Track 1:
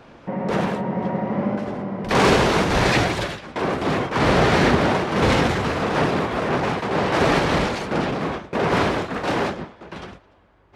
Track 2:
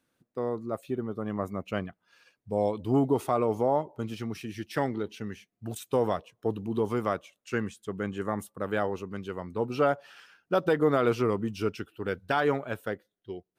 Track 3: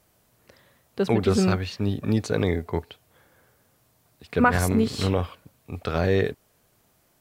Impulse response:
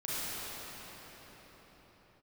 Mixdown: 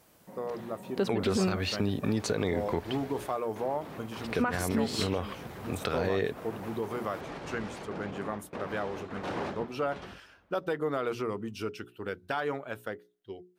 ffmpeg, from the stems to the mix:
-filter_complex "[0:a]alimiter=limit=0.178:level=0:latency=1:release=262,adynamicequalizer=threshold=0.0126:dfrequency=1600:dqfactor=0.7:tfrequency=1600:tqfactor=0.7:attack=5:release=100:ratio=0.375:range=1.5:mode=cutabove:tftype=highshelf,volume=0.282,afade=t=in:st=9.12:d=0.58:silence=0.298538[s0];[1:a]lowshelf=f=330:g=-4.5,bandreject=f=60:t=h:w=6,bandreject=f=120:t=h:w=6,bandreject=f=180:t=h:w=6,bandreject=f=240:t=h:w=6,bandreject=f=300:t=h:w=6,bandreject=f=360:t=h:w=6,bandreject=f=420:t=h:w=6,acontrast=63,volume=0.447[s1];[2:a]lowshelf=f=120:g=-10,volume=1.26[s2];[s0][s2]amix=inputs=2:normalize=0,dynaudnorm=f=160:g=13:m=2.51,alimiter=limit=0.237:level=0:latency=1:release=127,volume=1[s3];[s1][s3]amix=inputs=2:normalize=0,acompressor=threshold=0.0178:ratio=1.5"

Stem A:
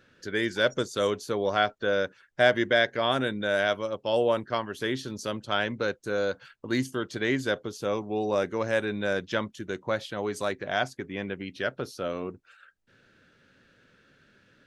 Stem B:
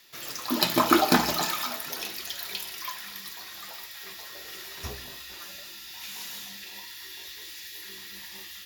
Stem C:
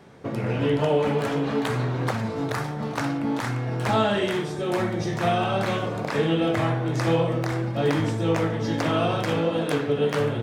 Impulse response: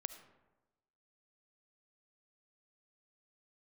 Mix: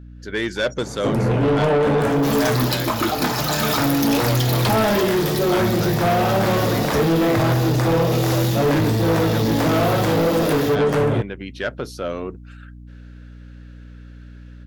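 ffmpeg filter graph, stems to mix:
-filter_complex "[0:a]volume=0.422[s0];[1:a]adelay=2100,volume=1.41[s1];[2:a]equalizer=f=3300:t=o:w=2.3:g=-8.5,adelay=800,volume=1.33[s2];[s0][s1][s2]amix=inputs=3:normalize=0,dynaudnorm=f=170:g=3:m=4.73,aeval=exprs='val(0)+0.0126*(sin(2*PI*60*n/s)+sin(2*PI*2*60*n/s)/2+sin(2*PI*3*60*n/s)/3+sin(2*PI*4*60*n/s)/4+sin(2*PI*5*60*n/s)/5)':c=same,asoftclip=type=tanh:threshold=0.2"

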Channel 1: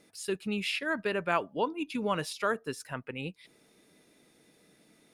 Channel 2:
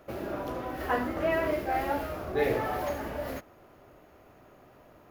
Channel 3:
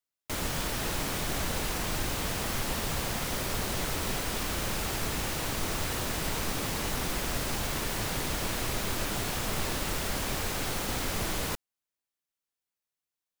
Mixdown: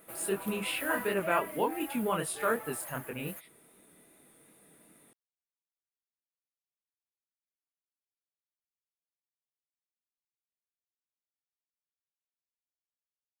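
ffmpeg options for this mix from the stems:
-filter_complex "[0:a]flanger=delay=19.5:depth=7.8:speed=2.6,equalizer=f=12000:w=0.54:g=-9.5,volume=1.41[s0];[1:a]tiltshelf=f=680:g=-7.5,aecho=1:1:6.1:0.56,volume=0.299,afade=t=out:st=1.06:d=0.34:silence=0.473151[s1];[s0][s1]amix=inputs=2:normalize=0,highshelf=f=7300:t=q:w=3:g=11"

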